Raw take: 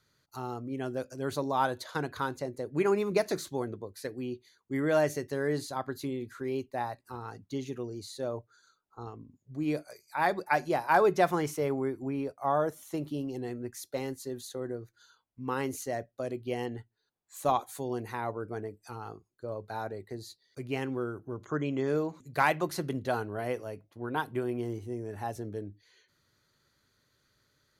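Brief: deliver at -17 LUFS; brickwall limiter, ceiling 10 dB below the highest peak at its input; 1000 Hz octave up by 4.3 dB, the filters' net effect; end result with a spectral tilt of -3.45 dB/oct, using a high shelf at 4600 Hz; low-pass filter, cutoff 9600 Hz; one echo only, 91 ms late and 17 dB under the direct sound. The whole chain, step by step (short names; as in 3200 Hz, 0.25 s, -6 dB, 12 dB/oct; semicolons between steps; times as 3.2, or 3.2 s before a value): LPF 9600 Hz; bell 1000 Hz +6 dB; high shelf 4600 Hz -9 dB; limiter -19 dBFS; echo 91 ms -17 dB; gain +16.5 dB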